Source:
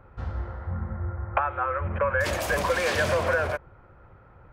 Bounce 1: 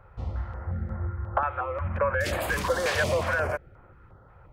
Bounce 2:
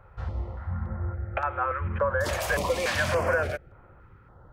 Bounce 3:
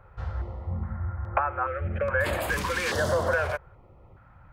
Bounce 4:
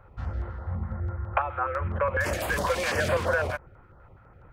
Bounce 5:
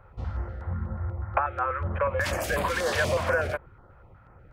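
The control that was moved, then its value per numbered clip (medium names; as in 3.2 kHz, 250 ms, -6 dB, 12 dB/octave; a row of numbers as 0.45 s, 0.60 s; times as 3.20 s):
step-sequenced notch, rate: 5.6 Hz, 3.5 Hz, 2.4 Hz, 12 Hz, 8.2 Hz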